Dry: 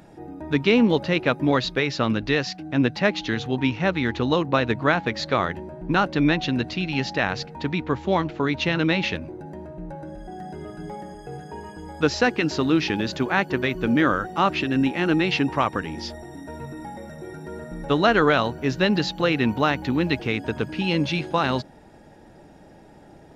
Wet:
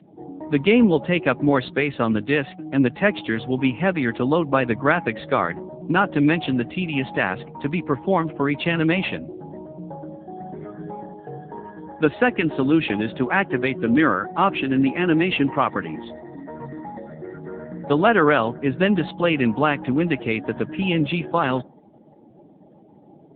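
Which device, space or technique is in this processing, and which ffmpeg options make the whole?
mobile call with aggressive noise cancelling: -af "highpass=120,afftdn=noise_reduction=20:noise_floor=-44,volume=2.5dB" -ar 8000 -c:a libopencore_amrnb -b:a 7950

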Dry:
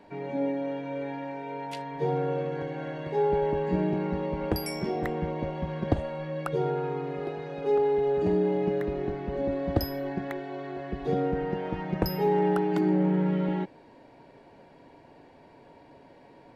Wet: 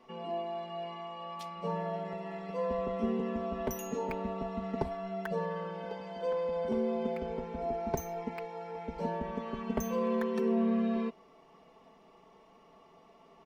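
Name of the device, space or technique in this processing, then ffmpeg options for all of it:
nightcore: -af "aecho=1:1:5.6:0.75,asetrate=54243,aresample=44100,volume=-8dB"

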